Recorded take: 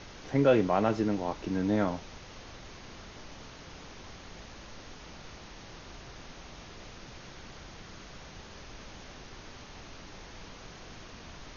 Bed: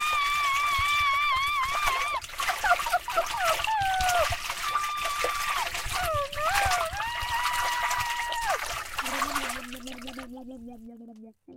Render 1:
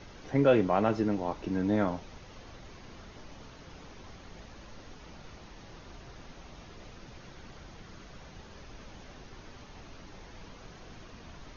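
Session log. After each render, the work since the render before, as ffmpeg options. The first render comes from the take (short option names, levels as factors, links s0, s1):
-af "afftdn=nr=6:nf=-49"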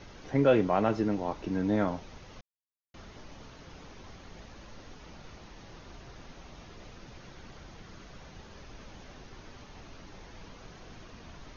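-filter_complex "[0:a]asplit=3[s0][s1][s2];[s0]atrim=end=2.41,asetpts=PTS-STARTPTS,afade=t=out:st=2.406:d=0.004:c=hsin[s3];[s1]atrim=start=2.41:end=2.94,asetpts=PTS-STARTPTS,volume=0[s4];[s2]atrim=start=2.94,asetpts=PTS-STARTPTS,afade=t=in:d=0.004:c=hsin[s5];[s3][s4][s5]concat=n=3:v=0:a=1"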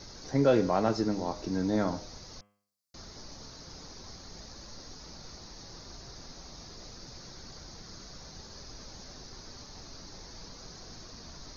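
-af "highshelf=f=3700:t=q:w=3:g=7.5,bandreject=f=102.2:t=h:w=4,bandreject=f=204.4:t=h:w=4,bandreject=f=306.6:t=h:w=4,bandreject=f=408.8:t=h:w=4,bandreject=f=511:t=h:w=4,bandreject=f=613.2:t=h:w=4,bandreject=f=715.4:t=h:w=4,bandreject=f=817.6:t=h:w=4,bandreject=f=919.8:t=h:w=4,bandreject=f=1022:t=h:w=4,bandreject=f=1124.2:t=h:w=4,bandreject=f=1226.4:t=h:w=4,bandreject=f=1328.6:t=h:w=4,bandreject=f=1430.8:t=h:w=4,bandreject=f=1533:t=h:w=4,bandreject=f=1635.2:t=h:w=4,bandreject=f=1737.4:t=h:w=4,bandreject=f=1839.6:t=h:w=4,bandreject=f=1941.8:t=h:w=4,bandreject=f=2044:t=h:w=4,bandreject=f=2146.2:t=h:w=4,bandreject=f=2248.4:t=h:w=4,bandreject=f=2350.6:t=h:w=4,bandreject=f=2452.8:t=h:w=4,bandreject=f=2555:t=h:w=4,bandreject=f=2657.2:t=h:w=4,bandreject=f=2759.4:t=h:w=4,bandreject=f=2861.6:t=h:w=4,bandreject=f=2963.8:t=h:w=4,bandreject=f=3066:t=h:w=4,bandreject=f=3168.2:t=h:w=4,bandreject=f=3270.4:t=h:w=4"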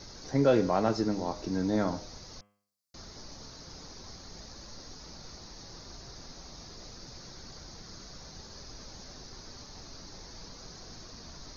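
-af anull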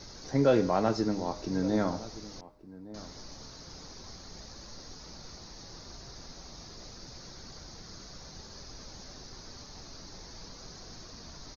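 -filter_complex "[0:a]asplit=2[s0][s1];[s1]adelay=1166,volume=0.141,highshelf=f=4000:g=-26.2[s2];[s0][s2]amix=inputs=2:normalize=0"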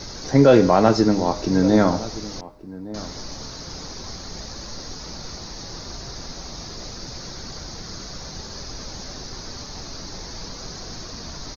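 -af "volume=3.98,alimiter=limit=0.708:level=0:latency=1"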